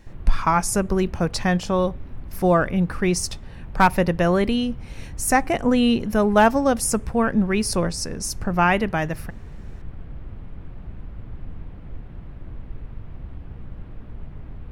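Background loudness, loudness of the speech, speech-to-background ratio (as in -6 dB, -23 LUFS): -40.0 LUFS, -21.5 LUFS, 18.5 dB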